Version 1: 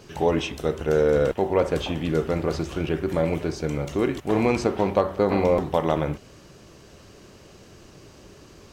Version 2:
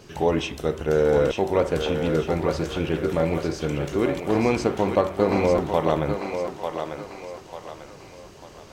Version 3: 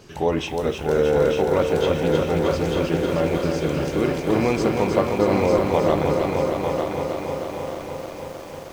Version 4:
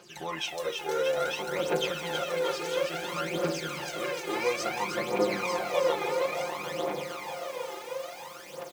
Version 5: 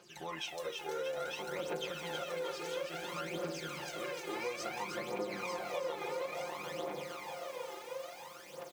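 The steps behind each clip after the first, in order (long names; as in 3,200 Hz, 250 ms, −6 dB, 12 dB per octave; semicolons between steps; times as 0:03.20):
feedback echo with a high-pass in the loop 895 ms, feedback 44%, high-pass 410 Hz, level −5 dB
feedback echo at a low word length 312 ms, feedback 80%, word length 8 bits, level −5 dB
high-pass filter 1,400 Hz 6 dB per octave; comb filter 5.7 ms, depth 86%; phase shifter 0.58 Hz, delay 2.5 ms, feedback 65%; level −5 dB
downward compressor 3 to 1, threshold −29 dBFS, peak gain reduction 7 dB; level −6.5 dB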